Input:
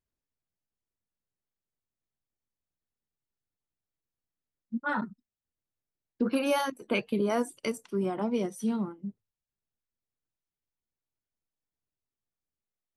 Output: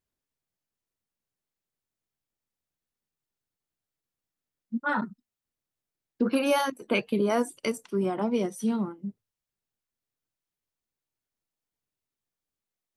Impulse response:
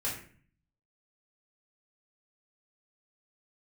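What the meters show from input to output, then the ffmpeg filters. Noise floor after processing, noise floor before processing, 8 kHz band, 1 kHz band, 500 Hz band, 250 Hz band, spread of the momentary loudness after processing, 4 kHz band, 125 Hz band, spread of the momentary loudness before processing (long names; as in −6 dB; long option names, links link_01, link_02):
below −85 dBFS, below −85 dBFS, +3.0 dB, +3.0 dB, +3.0 dB, +2.5 dB, 9 LU, +3.0 dB, +2.0 dB, 9 LU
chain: -af "lowshelf=frequency=81:gain=-6,volume=3dB"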